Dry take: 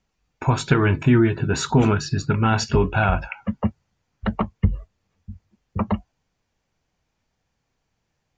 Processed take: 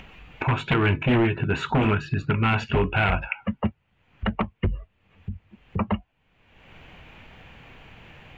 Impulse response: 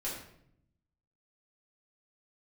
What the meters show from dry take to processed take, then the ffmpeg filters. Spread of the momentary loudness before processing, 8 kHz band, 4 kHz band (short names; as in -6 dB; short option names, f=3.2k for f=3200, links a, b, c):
11 LU, under -15 dB, -2.0 dB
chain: -af "aeval=exprs='0.251*(abs(mod(val(0)/0.251+3,4)-2)-1)':c=same,highshelf=f=3.9k:t=q:w=3:g=-12,acompressor=mode=upward:threshold=-21dB:ratio=2.5,volume=-2.5dB"